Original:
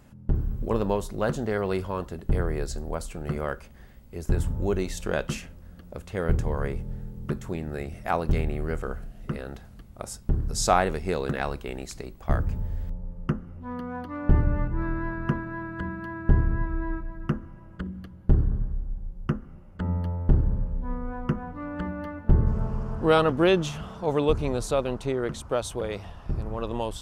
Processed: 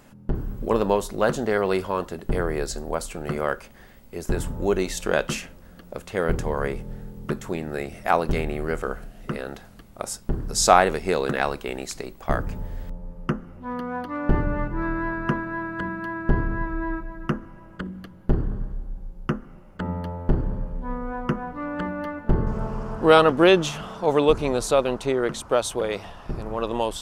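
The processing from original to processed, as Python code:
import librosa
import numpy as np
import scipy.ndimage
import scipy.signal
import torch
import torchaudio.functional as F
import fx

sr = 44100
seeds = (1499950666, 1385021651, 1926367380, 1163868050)

y = fx.peak_eq(x, sr, hz=67.0, db=-13.0, octaves=2.5)
y = y * 10.0 ** (6.5 / 20.0)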